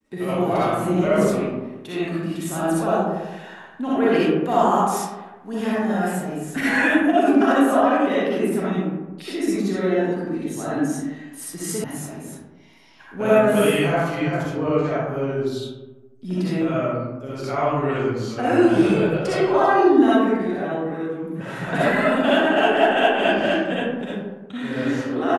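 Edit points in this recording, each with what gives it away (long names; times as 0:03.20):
0:11.84: cut off before it has died away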